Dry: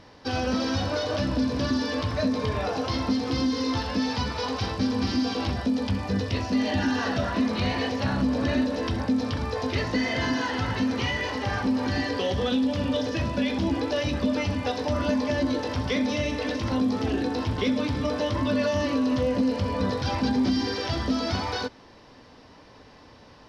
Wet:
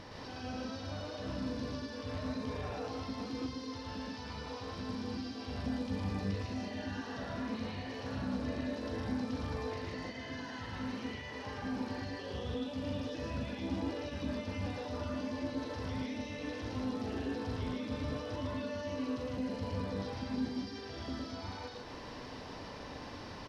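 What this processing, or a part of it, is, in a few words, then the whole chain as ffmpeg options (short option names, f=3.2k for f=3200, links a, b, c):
de-esser from a sidechain: -filter_complex "[0:a]asplit=2[a][b];[b]highpass=f=4.5k:p=1,apad=whole_len=1035712[c];[a][c]sidechaincompress=threshold=-57dB:ratio=16:attack=3.8:release=54,aecho=1:1:113.7|154.5:0.891|0.891,volume=1.5dB"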